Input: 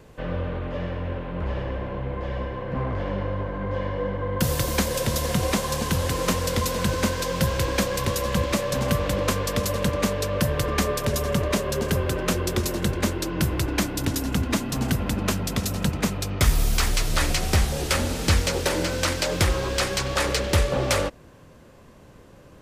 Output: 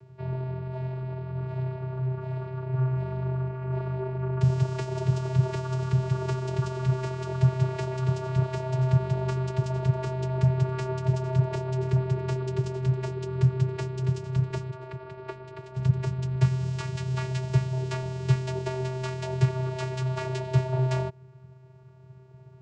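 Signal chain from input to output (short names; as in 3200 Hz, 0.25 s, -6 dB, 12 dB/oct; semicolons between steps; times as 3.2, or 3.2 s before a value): 14.7–15.76 three-band isolator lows -22 dB, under 290 Hz, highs -18 dB, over 2900 Hz; vocoder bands 8, square 129 Hz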